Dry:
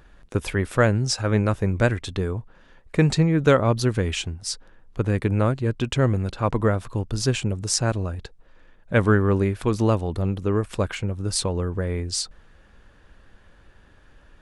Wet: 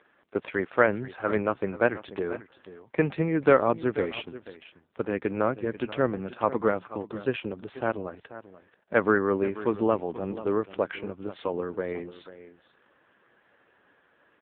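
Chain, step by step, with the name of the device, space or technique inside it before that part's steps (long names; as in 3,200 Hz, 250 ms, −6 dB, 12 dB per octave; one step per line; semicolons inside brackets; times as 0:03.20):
0:06.05–0:06.86: dynamic equaliser 180 Hz, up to +6 dB, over −46 dBFS, Q 7.5
satellite phone (band-pass filter 300–3,100 Hz; single-tap delay 486 ms −15 dB; AMR narrowband 5.9 kbit/s 8,000 Hz)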